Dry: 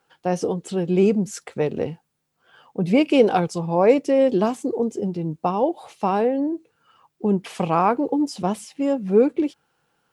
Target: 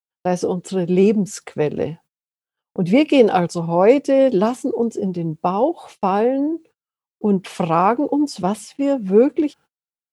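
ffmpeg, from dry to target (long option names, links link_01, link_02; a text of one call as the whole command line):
ffmpeg -i in.wav -af "agate=range=-42dB:threshold=-46dB:ratio=16:detection=peak,volume=3dB" out.wav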